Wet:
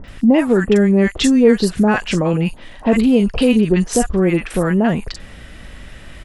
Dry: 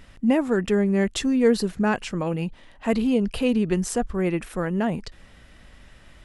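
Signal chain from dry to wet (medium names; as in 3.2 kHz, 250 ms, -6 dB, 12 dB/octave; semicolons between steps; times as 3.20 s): three bands offset in time lows, mids, highs 40/80 ms, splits 970/5300 Hz; in parallel at +3 dB: compression, threshold -30 dBFS, peak gain reduction 15 dB; on the sum: trim +5.5 dB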